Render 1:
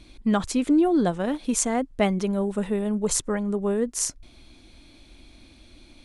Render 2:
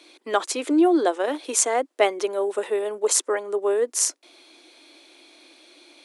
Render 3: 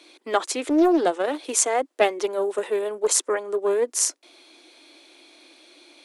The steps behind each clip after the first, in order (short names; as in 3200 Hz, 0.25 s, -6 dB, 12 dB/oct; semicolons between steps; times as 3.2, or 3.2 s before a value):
steep high-pass 320 Hz 48 dB/oct; gain +4.5 dB
Doppler distortion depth 0.3 ms